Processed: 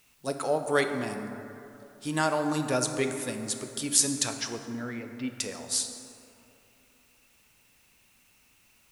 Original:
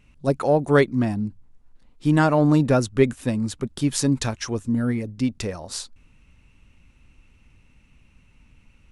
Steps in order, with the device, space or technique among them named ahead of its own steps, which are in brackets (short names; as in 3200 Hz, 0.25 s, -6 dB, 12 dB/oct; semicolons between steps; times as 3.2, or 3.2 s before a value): 4.36–5.28 LPF 5500 Hz -> 3000 Hz 24 dB/oct; turntable without a phono preamp (RIAA curve recording; white noise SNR 33 dB); plate-style reverb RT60 2.9 s, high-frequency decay 0.4×, DRR 5.5 dB; gain -6.5 dB